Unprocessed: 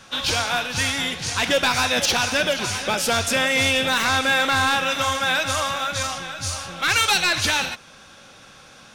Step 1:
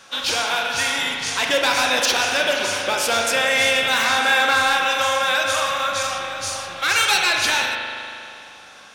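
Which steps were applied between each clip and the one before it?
tone controls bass -13 dB, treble +1 dB; spring tank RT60 2.6 s, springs 39 ms, chirp 75 ms, DRR 1.5 dB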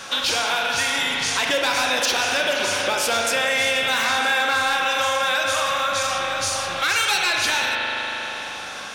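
in parallel at 0 dB: limiter -17 dBFS, peak gain reduction 10 dB; on the sum: compressor 2:1, threshold -32 dBFS, peak gain reduction 11.5 dB; gain +5 dB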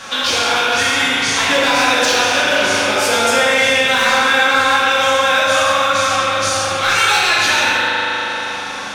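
high shelf 11000 Hz -7.5 dB; plate-style reverb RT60 1.5 s, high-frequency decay 0.65×, DRR -4.5 dB; gain +2 dB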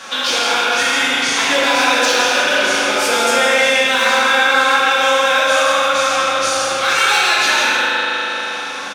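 HPF 210 Hz 12 dB/oct; on a send: echo 0.164 s -7.5 dB; on the sum: gain -1 dB

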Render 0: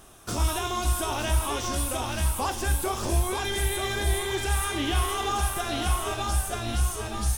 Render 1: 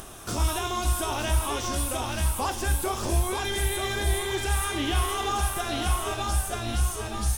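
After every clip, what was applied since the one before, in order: upward compressor, threshold -34 dBFS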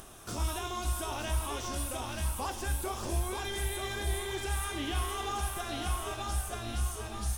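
split-band echo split 580 Hz, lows 92 ms, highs 0.564 s, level -16 dB; gain -7.5 dB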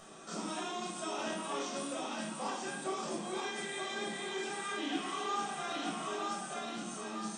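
soft clip -27.5 dBFS, distortion -16 dB; brick-wall FIR band-pass 160–9200 Hz; shoebox room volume 890 m³, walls furnished, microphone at 6.3 m; gain -7 dB

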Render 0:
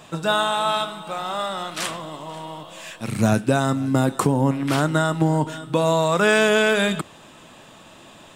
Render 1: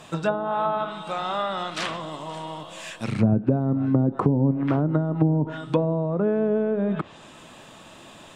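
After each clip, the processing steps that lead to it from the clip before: treble ducked by the level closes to 420 Hz, closed at -15 dBFS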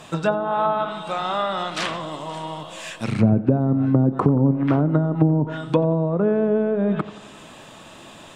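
tape echo 89 ms, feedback 66%, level -16 dB, low-pass 1800 Hz; gain +3 dB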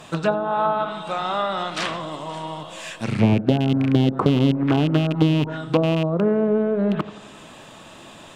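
rattling part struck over -20 dBFS, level -20 dBFS; Doppler distortion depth 0.46 ms

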